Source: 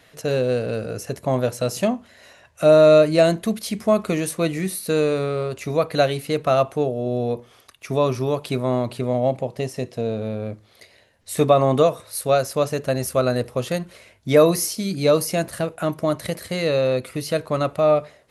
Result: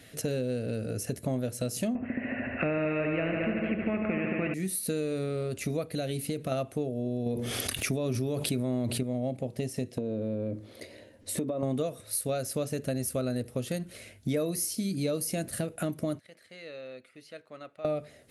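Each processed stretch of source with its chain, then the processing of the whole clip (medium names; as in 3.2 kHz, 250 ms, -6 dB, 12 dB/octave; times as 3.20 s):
1.95–4.54 s: rippled Chebyshev low-pass 2.7 kHz, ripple 3 dB + multi-head delay 74 ms, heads all three, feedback 47%, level -10 dB + spectrum-flattening compressor 2:1
5.84–6.52 s: peaking EQ 1.3 kHz -4 dB 1.9 oct + compression 2:1, threshold -25 dBFS
7.26–9.03 s: peaking EQ 1.2 kHz -3 dB 0.24 oct + level flattener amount 70%
9.98–11.63 s: compression 4:1, threshold -31 dBFS + treble shelf 6.3 kHz -6 dB + small resonant body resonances 320/530/940 Hz, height 11 dB, ringing for 20 ms
16.19–17.85 s: low-pass 1.6 kHz + differentiator
whole clip: fifteen-band graphic EQ 100 Hz +6 dB, 250 Hz +7 dB, 1 kHz -11 dB, 10 kHz +7 dB; compression 4:1, threshold -30 dBFS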